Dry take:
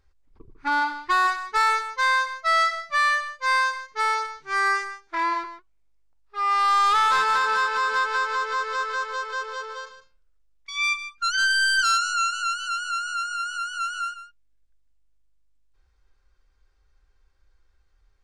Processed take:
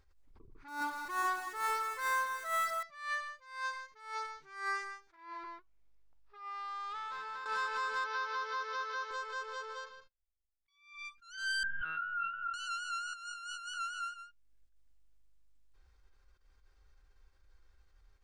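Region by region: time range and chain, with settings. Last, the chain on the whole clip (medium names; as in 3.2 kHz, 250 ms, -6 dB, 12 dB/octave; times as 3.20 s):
0.68–2.83 s: dead-time distortion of 0.065 ms + peaking EQ 300 Hz +5 dB 2.7 oct + echo whose repeats swap between lows and highs 124 ms, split 1.4 kHz, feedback 61%, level -6 dB
5.16–7.46 s: compression, threshold -33 dBFS + distance through air 83 m
8.04–9.11 s: zero-crossing glitches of -32.5 dBFS + Chebyshev band-pass 160–5900 Hz, order 5
9.84–11.05 s: low-pass 5.1 kHz + gate -58 dBFS, range -27 dB
11.63–12.54 s: low-pass 1.8 kHz 24 dB/octave + monotone LPC vocoder at 8 kHz 160 Hz
13.13–13.74 s: Chebyshev band-stop 1.3–2.8 kHz + compressor with a negative ratio -37 dBFS
whole clip: compression 1.5:1, threshold -56 dBFS; attacks held to a fixed rise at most 110 dB/s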